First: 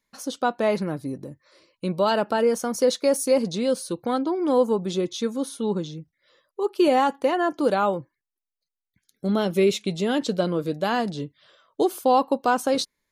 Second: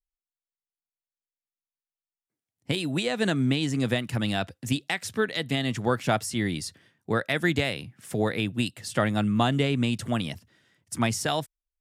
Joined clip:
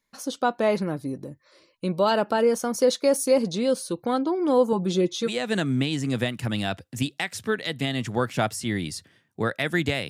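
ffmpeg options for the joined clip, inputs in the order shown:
-filter_complex "[0:a]asettb=1/sr,asplit=3[s0][s1][s2];[s0]atrim=end=4.724[s3];[s1]atrim=start=4.72:end=5.33,asetpts=PTS-STARTPTS,afade=t=in:d=0.004:c=qsin,afade=t=out:st=0.606:d=0.004:c=qsin,aecho=1:1:5.9:0.63,atrim=end_sample=26901[s4];[s2]atrim=start=5.326[s5];[s3][s4]acrossfade=d=0.004:c1=hsin:c2=qsin[s6];[s6][s5]acrossfade=d=0.004:c1=qsin:c2=hsin,apad=whole_dur=10.09,atrim=end=10.09,atrim=end=5.33,asetpts=PTS-STARTPTS[s7];[1:a]atrim=start=2.95:end=7.79,asetpts=PTS-STARTPTS[s8];[s7][s8]acrossfade=d=0.08:c1=tri:c2=tri"

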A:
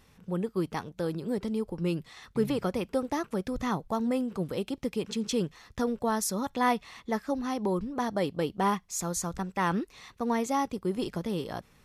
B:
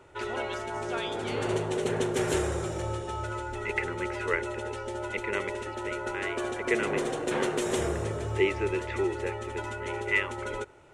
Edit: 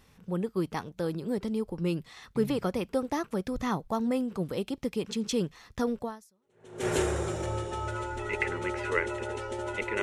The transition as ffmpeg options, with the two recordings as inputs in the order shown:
-filter_complex "[0:a]apad=whole_dur=10.02,atrim=end=10.02,atrim=end=6.87,asetpts=PTS-STARTPTS[s0];[1:a]atrim=start=1.37:end=5.38,asetpts=PTS-STARTPTS[s1];[s0][s1]acrossfade=d=0.86:c1=exp:c2=exp"

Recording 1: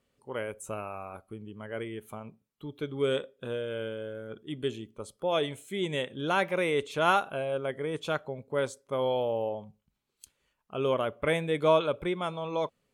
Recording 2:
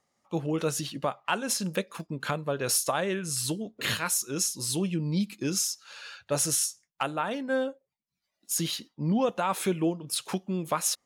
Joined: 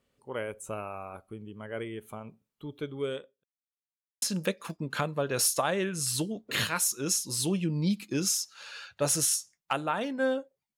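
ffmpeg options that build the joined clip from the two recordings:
-filter_complex "[0:a]apad=whole_dur=10.77,atrim=end=10.77,asplit=2[s0][s1];[s0]atrim=end=3.44,asetpts=PTS-STARTPTS,afade=t=out:st=2.76:d=0.68[s2];[s1]atrim=start=3.44:end=4.22,asetpts=PTS-STARTPTS,volume=0[s3];[1:a]atrim=start=1.52:end=8.07,asetpts=PTS-STARTPTS,afade=t=in:d=0.004:c=hsin[s4];[s2][s3][s4]concat=n=3:v=0:a=1"

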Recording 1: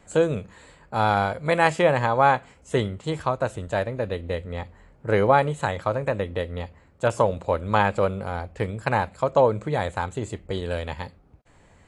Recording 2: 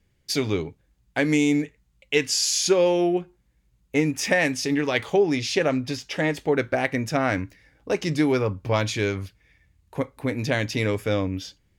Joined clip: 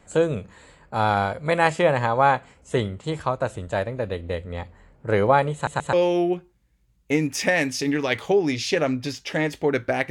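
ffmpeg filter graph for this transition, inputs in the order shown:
-filter_complex "[0:a]apad=whole_dur=10.1,atrim=end=10.1,asplit=3[s0][s1][s2];[s0]atrim=end=5.672[s3];[s1]atrim=start=5.538:end=5.672[s4];[s2]atrim=start=5.538:end=5.672[s5];[1:a]atrim=start=2.768:end=6.94[s6];[s3][s4]acrossfade=d=0.004:c1=hsin:c2=hsin[s7];[s7][s5]acrossfade=d=0.004:c1=hsin:c2=hsin[s8];[s8][s6]acrossfade=d=0.004:c1=hsin:c2=hsin"

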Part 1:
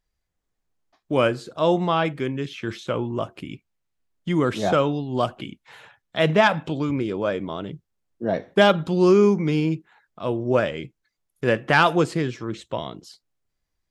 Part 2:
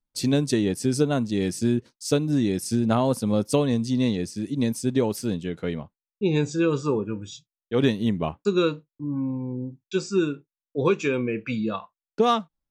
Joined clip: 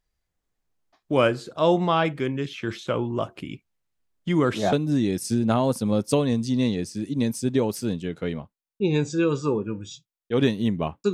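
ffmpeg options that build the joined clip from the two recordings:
-filter_complex "[0:a]apad=whole_dur=11.13,atrim=end=11.13,atrim=end=4.732[s0];[1:a]atrim=start=2.138:end=8.54[s1];[s0][s1]acrossfade=d=0.004:c1=hsin:c2=hsin"

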